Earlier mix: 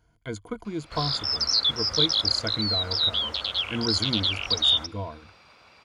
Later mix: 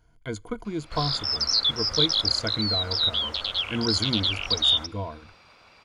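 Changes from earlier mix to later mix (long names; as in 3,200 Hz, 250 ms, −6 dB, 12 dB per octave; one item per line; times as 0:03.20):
speech: send on
master: remove high-pass filter 40 Hz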